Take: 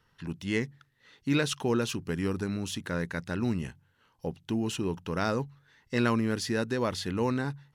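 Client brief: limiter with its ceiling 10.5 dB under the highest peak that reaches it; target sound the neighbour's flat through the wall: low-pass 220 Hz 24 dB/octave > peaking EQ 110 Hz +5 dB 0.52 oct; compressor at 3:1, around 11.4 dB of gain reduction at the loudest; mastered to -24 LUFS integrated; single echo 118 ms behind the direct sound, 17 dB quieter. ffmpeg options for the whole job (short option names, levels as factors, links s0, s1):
-af "acompressor=threshold=0.0126:ratio=3,alimiter=level_in=3.76:limit=0.0631:level=0:latency=1,volume=0.266,lowpass=f=220:w=0.5412,lowpass=f=220:w=1.3066,equalizer=f=110:t=o:w=0.52:g=5,aecho=1:1:118:0.141,volume=15.8"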